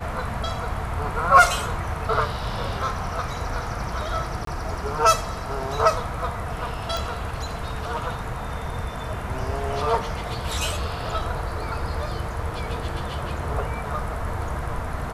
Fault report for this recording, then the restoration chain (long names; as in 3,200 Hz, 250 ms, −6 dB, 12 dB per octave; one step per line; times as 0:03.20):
0:04.45–0:04.47: drop-out 23 ms
0:06.97: click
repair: click removal
repair the gap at 0:04.45, 23 ms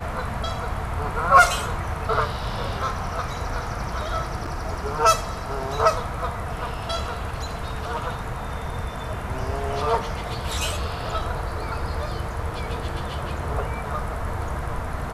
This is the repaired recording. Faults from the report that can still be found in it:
none of them is left